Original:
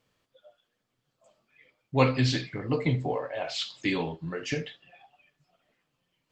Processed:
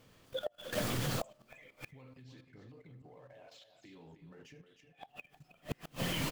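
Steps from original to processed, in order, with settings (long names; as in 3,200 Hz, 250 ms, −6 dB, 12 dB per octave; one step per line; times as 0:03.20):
mu-law and A-law mismatch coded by mu
camcorder AGC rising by 36 dB per second
dynamic equaliser 4,700 Hz, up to −5 dB, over −46 dBFS, Q 5.8
output level in coarse steps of 14 dB
single-tap delay 311 ms −10 dB
spring reverb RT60 1.1 s, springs 38 ms, chirp 55 ms, DRR 18.5 dB
gate with flip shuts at −29 dBFS, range −35 dB
low-shelf EQ 480 Hz +5.5 dB
level +4.5 dB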